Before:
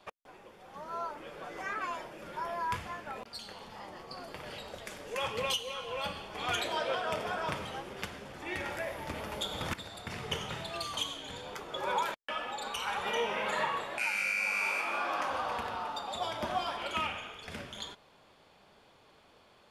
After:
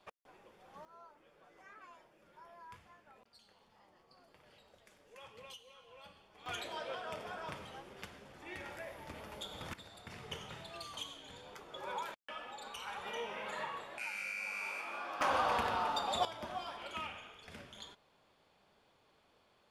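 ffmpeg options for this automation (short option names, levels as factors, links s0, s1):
-af "asetnsamples=n=441:p=0,asendcmd='0.85 volume volume -20dB;6.46 volume volume -9.5dB;15.21 volume volume 2.5dB;16.25 volume volume -9dB',volume=0.422"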